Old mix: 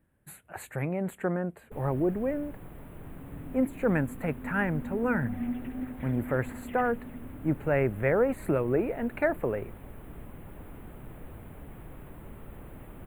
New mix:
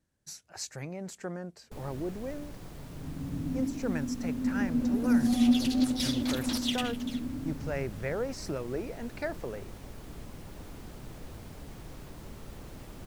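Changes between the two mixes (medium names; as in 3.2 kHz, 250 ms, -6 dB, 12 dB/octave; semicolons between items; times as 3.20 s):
speech -8.5 dB; second sound: remove four-pole ladder low-pass 2.2 kHz, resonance 55%; master: remove Butterworth band-stop 5.4 kHz, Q 0.67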